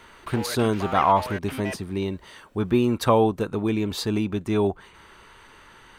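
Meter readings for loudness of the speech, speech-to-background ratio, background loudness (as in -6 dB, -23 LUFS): -24.5 LUFS, 11.0 dB, -35.5 LUFS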